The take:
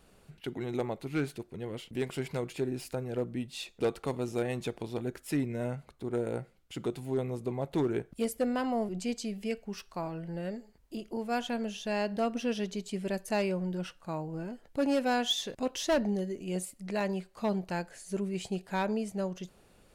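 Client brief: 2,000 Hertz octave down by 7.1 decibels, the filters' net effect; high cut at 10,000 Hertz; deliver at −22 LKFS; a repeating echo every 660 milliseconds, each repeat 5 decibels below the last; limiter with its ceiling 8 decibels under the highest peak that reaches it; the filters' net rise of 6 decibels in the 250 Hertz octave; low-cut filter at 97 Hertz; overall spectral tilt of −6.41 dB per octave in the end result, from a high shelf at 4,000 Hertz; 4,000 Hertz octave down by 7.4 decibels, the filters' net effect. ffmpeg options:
ffmpeg -i in.wav -af "highpass=97,lowpass=10000,equalizer=frequency=250:width_type=o:gain=7.5,equalizer=frequency=2000:width_type=o:gain=-9,highshelf=frequency=4000:gain=5,equalizer=frequency=4000:width_type=o:gain=-9,alimiter=limit=-24dB:level=0:latency=1,aecho=1:1:660|1320|1980|2640|3300|3960|4620:0.562|0.315|0.176|0.0988|0.0553|0.031|0.0173,volume=10.5dB" out.wav

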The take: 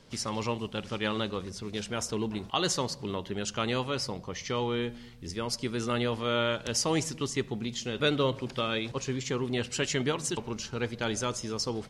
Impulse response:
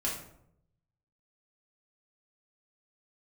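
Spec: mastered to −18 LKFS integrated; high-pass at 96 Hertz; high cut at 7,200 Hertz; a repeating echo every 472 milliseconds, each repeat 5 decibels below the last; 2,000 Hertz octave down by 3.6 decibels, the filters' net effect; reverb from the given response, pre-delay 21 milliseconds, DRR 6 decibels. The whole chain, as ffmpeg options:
-filter_complex "[0:a]highpass=96,lowpass=7200,equalizer=frequency=2000:width_type=o:gain=-5,aecho=1:1:472|944|1416|1888|2360|2832|3304:0.562|0.315|0.176|0.0988|0.0553|0.031|0.0173,asplit=2[link_01][link_02];[1:a]atrim=start_sample=2205,adelay=21[link_03];[link_02][link_03]afir=irnorm=-1:irlink=0,volume=-11dB[link_04];[link_01][link_04]amix=inputs=2:normalize=0,volume=12dB"

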